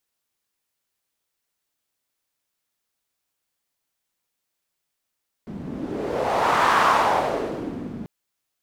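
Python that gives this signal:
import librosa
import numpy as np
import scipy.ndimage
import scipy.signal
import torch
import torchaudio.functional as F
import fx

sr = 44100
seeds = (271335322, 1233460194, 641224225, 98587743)

y = fx.wind(sr, seeds[0], length_s=2.59, low_hz=210.0, high_hz=1100.0, q=2.5, gusts=1, swing_db=16.0)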